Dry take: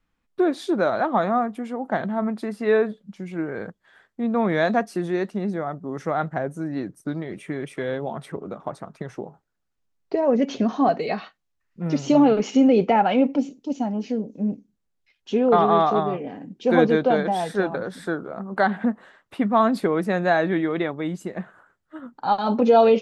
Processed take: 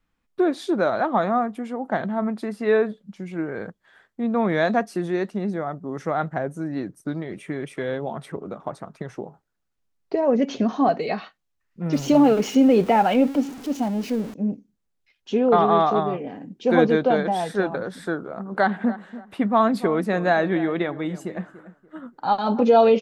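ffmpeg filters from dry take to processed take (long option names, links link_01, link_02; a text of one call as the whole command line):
ffmpeg -i in.wav -filter_complex "[0:a]asettb=1/sr,asplit=3[link_01][link_02][link_03];[link_01]atrim=end=11.934[link_04];[link_02]atrim=start=11.93:end=14.34,asetpts=PTS-STARTPTS,afade=type=in:duration=0.004:curve=qsin,afade=type=out:start_time=2.406:duration=0.004:curve=qsin,aeval=exprs='val(0)+0.5*0.02*sgn(val(0))':channel_layout=same[link_05];[link_03]atrim=start=14.336[link_06];[link_04][link_05]acrossfade=duration=0.004:curve1=hsin:curve2=qsin[link_07];[link_07][link_06]acrossfade=duration=0.004:curve1=qsin:curve2=hsin,asplit=3[link_08][link_09][link_10];[link_08]afade=type=out:start_time=18.45:duration=0.02[link_11];[link_09]asplit=2[link_12][link_13];[link_13]adelay=289,lowpass=frequency=2000:poles=1,volume=-15dB,asplit=2[link_14][link_15];[link_15]adelay=289,lowpass=frequency=2000:poles=1,volume=0.31,asplit=2[link_16][link_17];[link_17]adelay=289,lowpass=frequency=2000:poles=1,volume=0.31[link_18];[link_12][link_14][link_16][link_18]amix=inputs=4:normalize=0,afade=type=in:start_time=18.45:duration=0.02,afade=type=out:start_time=22.64:duration=0.02[link_19];[link_10]afade=type=in:start_time=22.64:duration=0.02[link_20];[link_11][link_19][link_20]amix=inputs=3:normalize=0" out.wav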